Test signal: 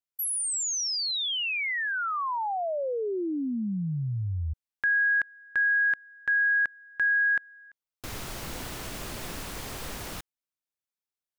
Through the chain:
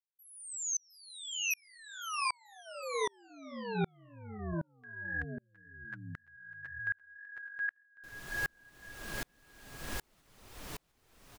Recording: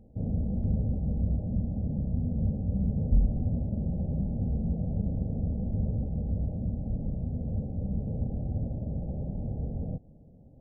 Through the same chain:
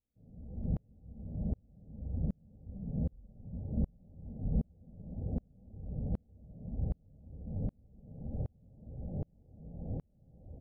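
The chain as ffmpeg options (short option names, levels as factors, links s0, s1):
-af "aecho=1:1:710|1314|1826|2263|2633:0.631|0.398|0.251|0.158|0.1,flanger=delay=2.2:depth=5.1:regen=-40:speed=1.9:shape=sinusoidal,aeval=exprs='val(0)*pow(10,-39*if(lt(mod(-1.3*n/s,1),2*abs(-1.3)/1000),1-mod(-1.3*n/s,1)/(2*abs(-1.3)/1000),(mod(-1.3*n/s,1)-2*abs(-1.3)/1000)/(1-2*abs(-1.3)/1000))/20)':c=same,volume=1.33"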